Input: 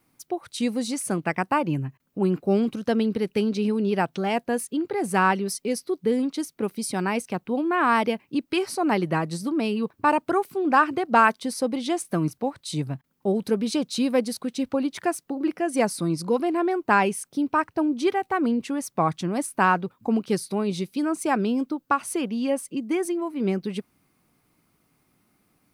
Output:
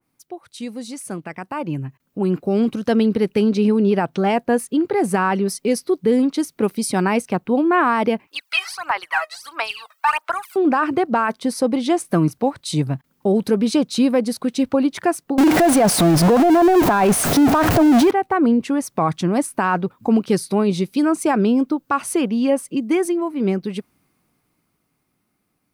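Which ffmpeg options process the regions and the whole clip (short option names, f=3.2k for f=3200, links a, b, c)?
-filter_complex "[0:a]asettb=1/sr,asplit=3[a][b][c];[a]atrim=end=8.274[d];[b]atrim=start=8.27:end=10.56,asetpts=PTS-STARTPTS,afade=t=in:d=0.004:c=qsin,afade=t=out:st=2.286:d=0.004:c=qsin,highpass=f=1k:w=0.5412,highpass=f=1k:w=1.3066,acrossover=split=4800[e][f];[f]acompressor=threshold=-46dB:ratio=4:attack=1:release=60[g];[e][g]amix=inputs=2:normalize=0,aphaser=in_gain=1:out_gain=1:delay=1.6:decay=0.79:speed=1.5:type=sinusoidal[h];[c]atrim=start=10.556[i];[d][h]acrossfade=d=0.004:c1=hsin:c2=qsin[j];[j][i]acrossfade=d=0.004:c1=qsin:c2=hsin,asettb=1/sr,asplit=3[k][l][m];[k]atrim=end=15.384[n];[l]atrim=start=15.38:end=18.11,asetpts=PTS-STARTPTS,afade=t=in:d=0.004:c=qsin,afade=t=out:st=2.726:d=0.004:c=qsin,aeval=exprs='val(0)+0.5*0.0708*sgn(val(0))':c=same,equalizer=f=690:w=5.2:g=8.5,acontrast=39[o];[m]atrim=start=18.106[p];[n][o]acrossfade=d=0.004:c1=hsin:c2=qsin[q];[q][p]acrossfade=d=0.004:c1=qsin:c2=hsin,alimiter=limit=-16dB:level=0:latency=1:release=39,dynaudnorm=f=140:g=31:m=14dB,adynamicequalizer=threshold=0.0316:dfrequency=2100:dqfactor=0.7:tfrequency=2100:tqfactor=0.7:attack=5:release=100:ratio=0.375:range=3.5:mode=cutabove:tftype=highshelf,volume=-5dB"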